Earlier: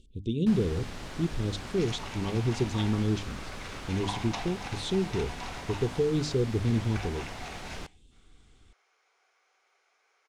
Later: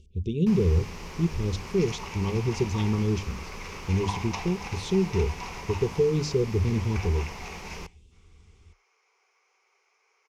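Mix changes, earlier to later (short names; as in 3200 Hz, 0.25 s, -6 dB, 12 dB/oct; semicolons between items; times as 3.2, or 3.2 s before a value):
speech: add bell 87 Hz +10 dB 0.76 oct; master: add ripple EQ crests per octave 0.8, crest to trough 9 dB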